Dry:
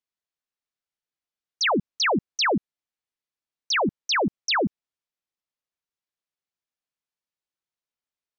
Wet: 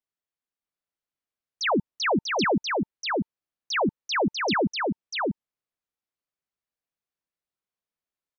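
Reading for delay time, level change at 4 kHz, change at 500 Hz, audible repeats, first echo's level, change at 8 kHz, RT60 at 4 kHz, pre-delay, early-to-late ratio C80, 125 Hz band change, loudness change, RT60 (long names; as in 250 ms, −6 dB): 643 ms, −4.0 dB, +1.5 dB, 1, −3.0 dB, can't be measured, no reverb audible, no reverb audible, no reverb audible, +1.5 dB, −2.5 dB, no reverb audible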